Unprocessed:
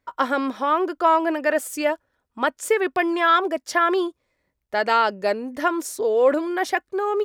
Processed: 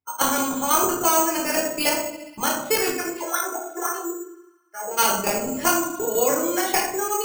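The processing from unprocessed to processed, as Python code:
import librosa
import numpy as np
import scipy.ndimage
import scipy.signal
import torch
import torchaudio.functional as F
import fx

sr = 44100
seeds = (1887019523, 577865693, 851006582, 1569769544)

y = fx.bin_expand(x, sr, power=1.5)
y = scipy.signal.sosfilt(scipy.signal.butter(2, 190.0, 'highpass', fs=sr, output='sos'), y)
y = fx.peak_eq(y, sr, hz=1800.0, db=-10.5, octaves=0.33)
y = fx.hum_notches(y, sr, base_hz=60, count=10)
y = fx.level_steps(y, sr, step_db=11)
y = fx.wah_lfo(y, sr, hz=fx.line((2.92, 5.8), (4.97, 1.7)), low_hz=350.0, high_hz=1900.0, q=11.0, at=(2.92, 4.97), fade=0.02)
y = fx.echo_wet_highpass(y, sr, ms=68, feedback_pct=76, hz=1800.0, wet_db=-23.0)
y = fx.room_shoebox(y, sr, seeds[0], volume_m3=450.0, walls='furnished', distance_m=4.1)
y = np.repeat(scipy.signal.resample_poly(y, 1, 6), 6)[:len(y)]
y = fx.spectral_comp(y, sr, ratio=2.0)
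y = y * librosa.db_to_amplitude(2.5)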